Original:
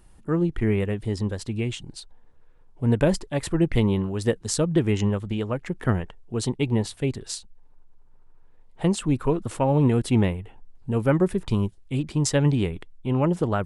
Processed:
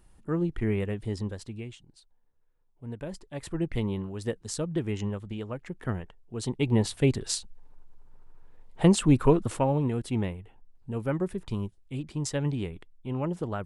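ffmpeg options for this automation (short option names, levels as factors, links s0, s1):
-af "volume=5.62,afade=t=out:st=1.12:d=0.7:silence=0.237137,afade=t=in:st=3.08:d=0.48:silence=0.354813,afade=t=in:st=6.36:d=0.67:silence=0.281838,afade=t=out:st=9.3:d=0.53:silence=0.281838"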